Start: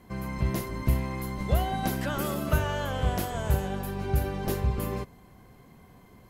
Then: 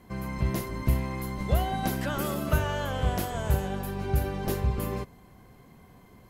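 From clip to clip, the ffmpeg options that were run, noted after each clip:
ffmpeg -i in.wav -af anull out.wav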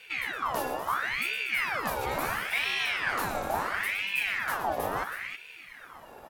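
ffmpeg -i in.wav -af "areverse,acompressor=threshold=-32dB:ratio=6,areverse,aecho=1:1:116|238|320:0.335|0.251|0.376,aeval=exprs='val(0)*sin(2*PI*1600*n/s+1600*0.6/0.73*sin(2*PI*0.73*n/s))':channel_layout=same,volume=6.5dB" out.wav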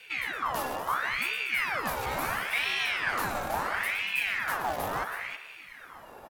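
ffmpeg -i in.wav -filter_complex "[0:a]acrossover=split=330|530|2100[link_01][link_02][link_03][link_04];[link_02]aeval=exprs='(mod(94.4*val(0)+1,2)-1)/94.4':channel_layout=same[link_05];[link_03]asplit=5[link_06][link_07][link_08][link_09][link_10];[link_07]adelay=168,afreqshift=-46,volume=-9.5dB[link_11];[link_08]adelay=336,afreqshift=-92,volume=-19.1dB[link_12];[link_09]adelay=504,afreqshift=-138,volume=-28.8dB[link_13];[link_10]adelay=672,afreqshift=-184,volume=-38.4dB[link_14];[link_06][link_11][link_12][link_13][link_14]amix=inputs=5:normalize=0[link_15];[link_01][link_05][link_15][link_04]amix=inputs=4:normalize=0" out.wav

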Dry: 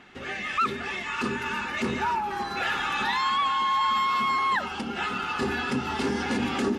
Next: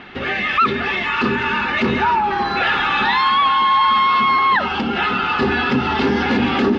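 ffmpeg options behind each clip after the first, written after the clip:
ffmpeg -i in.wav -filter_complex "[0:a]lowpass=frequency=4300:width=0.5412,lowpass=frequency=4300:width=1.3066,asplit=2[link_01][link_02];[link_02]alimiter=level_in=3dB:limit=-24dB:level=0:latency=1,volume=-3dB,volume=1.5dB[link_03];[link_01][link_03]amix=inputs=2:normalize=0,volume=6.5dB" out.wav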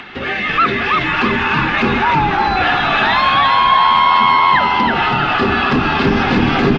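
ffmpeg -i in.wav -filter_complex "[0:a]acrossover=split=220|820[link_01][link_02][link_03];[link_03]acompressor=mode=upward:threshold=-31dB:ratio=2.5[link_04];[link_01][link_02][link_04]amix=inputs=3:normalize=0,asplit=7[link_05][link_06][link_07][link_08][link_09][link_10][link_11];[link_06]adelay=326,afreqshift=-83,volume=-3dB[link_12];[link_07]adelay=652,afreqshift=-166,volume=-9.4dB[link_13];[link_08]adelay=978,afreqshift=-249,volume=-15.8dB[link_14];[link_09]adelay=1304,afreqshift=-332,volume=-22.1dB[link_15];[link_10]adelay=1630,afreqshift=-415,volume=-28.5dB[link_16];[link_11]adelay=1956,afreqshift=-498,volume=-34.9dB[link_17];[link_05][link_12][link_13][link_14][link_15][link_16][link_17]amix=inputs=7:normalize=0,volume=1.5dB" out.wav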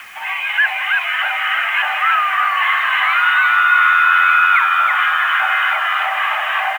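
ffmpeg -i in.wav -af "aecho=1:1:1186:0.422,highpass=frequency=440:width_type=q:width=0.5412,highpass=frequency=440:width_type=q:width=1.307,lowpass=frequency=2500:width_type=q:width=0.5176,lowpass=frequency=2500:width_type=q:width=0.7071,lowpass=frequency=2500:width_type=q:width=1.932,afreqshift=370,acrusher=bits=6:mix=0:aa=0.000001,volume=-1dB" out.wav

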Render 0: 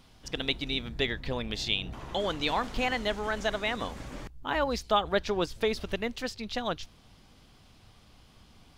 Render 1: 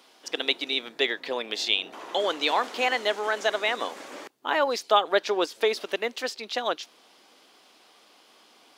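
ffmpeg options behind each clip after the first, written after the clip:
ffmpeg -i in.wav -af "highpass=frequency=330:width=0.5412,highpass=frequency=330:width=1.3066,volume=5dB" out.wav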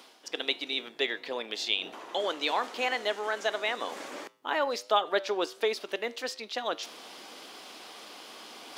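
ffmpeg -i in.wav -af "areverse,acompressor=mode=upward:threshold=-28dB:ratio=2.5,areverse,flanger=delay=8.6:depth=1.1:regen=-89:speed=1.4:shape=sinusoidal" out.wav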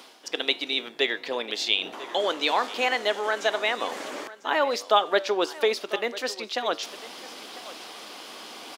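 ffmpeg -i in.wav -af "aecho=1:1:997:0.133,volume=5dB" out.wav

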